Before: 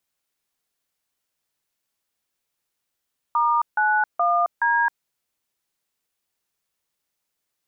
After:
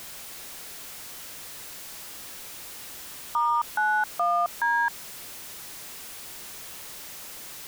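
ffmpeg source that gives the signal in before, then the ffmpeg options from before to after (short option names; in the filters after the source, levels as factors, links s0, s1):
-f lavfi -i "aevalsrc='0.106*clip(min(mod(t,0.422),0.267-mod(t,0.422))/0.002,0,1)*(eq(floor(t/0.422),0)*(sin(2*PI*941*mod(t,0.422))+sin(2*PI*1209*mod(t,0.422)))+eq(floor(t/0.422),1)*(sin(2*PI*852*mod(t,0.422))+sin(2*PI*1477*mod(t,0.422)))+eq(floor(t/0.422),2)*(sin(2*PI*697*mod(t,0.422))+sin(2*PI*1209*mod(t,0.422)))+eq(floor(t/0.422),3)*(sin(2*PI*941*mod(t,0.422))+sin(2*PI*1633*mod(t,0.422))))':d=1.688:s=44100"
-af "aeval=exprs='val(0)+0.5*0.0188*sgn(val(0))':c=same,alimiter=limit=0.133:level=0:latency=1:release=36"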